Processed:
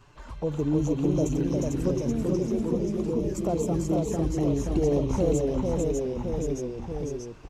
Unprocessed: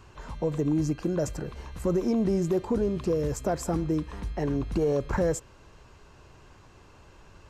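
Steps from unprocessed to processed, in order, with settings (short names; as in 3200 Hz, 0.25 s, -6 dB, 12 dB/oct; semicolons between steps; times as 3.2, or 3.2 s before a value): 1.93–3.35 resonator 120 Hz, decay 0.15 s, harmonics all, mix 70%; envelope flanger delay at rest 9.2 ms, full sweep at -27.5 dBFS; echo 0.447 s -3.5 dB; echoes that change speed 0.281 s, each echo -1 st, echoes 3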